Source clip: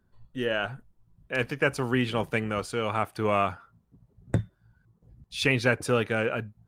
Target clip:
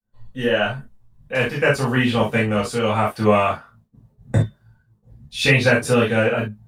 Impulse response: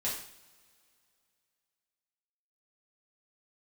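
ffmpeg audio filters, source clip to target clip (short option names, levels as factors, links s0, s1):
-filter_complex "[0:a]agate=range=0.0224:threshold=0.00158:ratio=3:detection=peak[s0];[1:a]atrim=start_sample=2205,atrim=end_sample=3528[s1];[s0][s1]afir=irnorm=-1:irlink=0,volume=1.68"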